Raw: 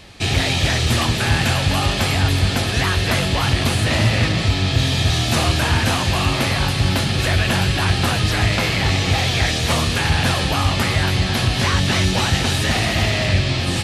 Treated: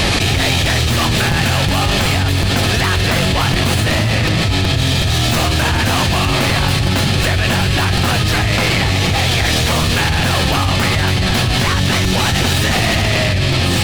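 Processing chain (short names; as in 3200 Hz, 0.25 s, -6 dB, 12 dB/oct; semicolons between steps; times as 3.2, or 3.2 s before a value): tracing distortion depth 0.049 ms; crackling interface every 0.37 s, samples 256, repeat, from 0.94; fast leveller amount 100%; gain -2 dB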